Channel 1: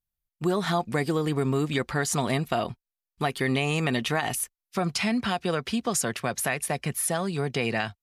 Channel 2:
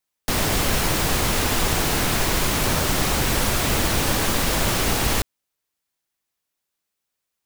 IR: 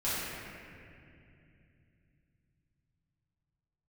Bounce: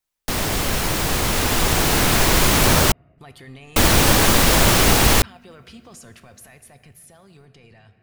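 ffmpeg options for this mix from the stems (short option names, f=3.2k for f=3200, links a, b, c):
-filter_complex "[0:a]alimiter=level_in=0.5dB:limit=-24dB:level=0:latency=1:release=11,volume=-0.5dB,lowshelf=f=120:t=q:w=1.5:g=9,volume=-17.5dB,asplit=2[a][b];[b]volume=-17dB[c];[1:a]volume=-1dB,asplit=3[d][e][f];[d]atrim=end=2.92,asetpts=PTS-STARTPTS,afade=t=out:st=2.916:d=0.004:c=hsin[g];[e]atrim=start=2.92:end=3.76,asetpts=PTS-STARTPTS,volume=0[h];[f]atrim=start=3.76,asetpts=PTS-STARTPTS,afade=t=in:d=0.004:c=hsin[i];[g][h][i]concat=n=3:v=0:a=1[j];[2:a]atrim=start_sample=2205[k];[c][k]afir=irnorm=-1:irlink=0[l];[a][j][l]amix=inputs=3:normalize=0,dynaudnorm=f=210:g=17:m=11.5dB"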